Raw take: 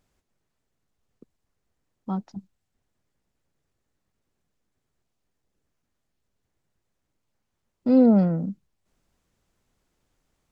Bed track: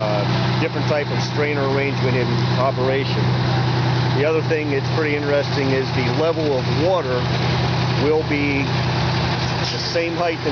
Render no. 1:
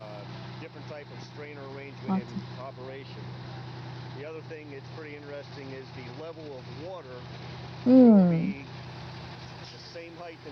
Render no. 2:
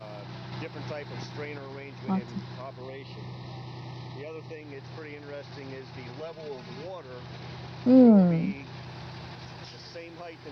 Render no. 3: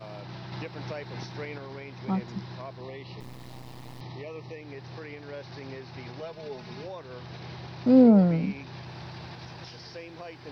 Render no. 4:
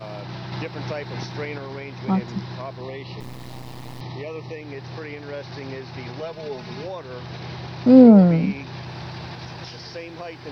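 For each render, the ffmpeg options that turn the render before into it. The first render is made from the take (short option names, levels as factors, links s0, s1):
-filter_complex "[1:a]volume=0.0794[s0];[0:a][s0]amix=inputs=2:normalize=0"
-filter_complex "[0:a]asplit=3[s0][s1][s2];[s0]afade=t=out:st=2.8:d=0.02[s3];[s1]asuperstop=centerf=1500:order=20:qfactor=3.4,afade=t=in:st=2.8:d=0.02,afade=t=out:st=4.61:d=0.02[s4];[s2]afade=t=in:st=4.61:d=0.02[s5];[s3][s4][s5]amix=inputs=3:normalize=0,asettb=1/sr,asplit=3[s6][s7][s8];[s6]atrim=end=6.204[s9];[s7]atrim=start=6.2:end=6.84,asetpts=PTS-STARTPTS,afade=t=in:d=0.004:c=qsin,afade=t=out:st=0.636:d=0.004:c=qsin,aecho=1:1:4.8:0.76,atrim=end_sample=28224[s10];[s8]atrim=start=6.836[s11];[s9][s10]acrossfade=d=0.004:c1=hsin:c2=qsin[s12];[s12][s11]acrossfade=d=0.004:c1=qsin:c2=hsin,asplit=3[s13][s14][s15];[s13]atrim=end=0.522[s16];[s14]atrim=start=0.518:end=1.582,asetpts=PTS-STARTPTS,volume=1.68[s17];[s15]atrim=start=1.578[s18];[s16][s17]acrossfade=d=0.004:c1=hsin:c2=hsin[s19];[s19][s18]acrossfade=d=0.004:c1=hsin:c2=hsin"
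-filter_complex "[0:a]asettb=1/sr,asplit=3[s0][s1][s2];[s0]atrim=end=3.204[s3];[s1]atrim=start=3.2:end=4.01,asetpts=PTS-STARTPTS,afade=t=in:d=0.004:c=qsin,afade=t=out:st=0.806:d=0.004:c=qsin,acrusher=bits=6:dc=4:mix=0:aa=0.000001[s4];[s2]atrim=start=4.006[s5];[s3][s4]acrossfade=d=0.004:c1=hsin:c2=qsin[s6];[s6][s5]acrossfade=d=0.004:c1=qsin:c2=hsin"
-af "volume=2.24"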